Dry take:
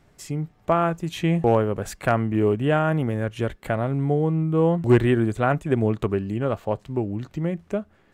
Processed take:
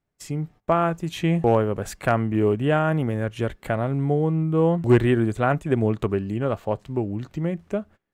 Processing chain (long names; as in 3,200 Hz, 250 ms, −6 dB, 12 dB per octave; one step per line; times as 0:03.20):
noise gate −44 dBFS, range −23 dB